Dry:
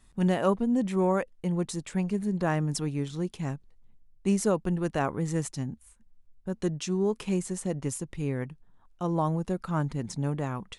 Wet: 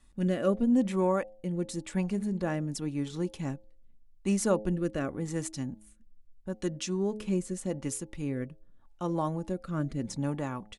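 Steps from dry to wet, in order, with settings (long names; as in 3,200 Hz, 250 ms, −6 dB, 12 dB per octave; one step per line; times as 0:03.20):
comb filter 3.5 ms, depth 33%
hum removal 106.3 Hz, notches 8
rotating-speaker cabinet horn 0.85 Hz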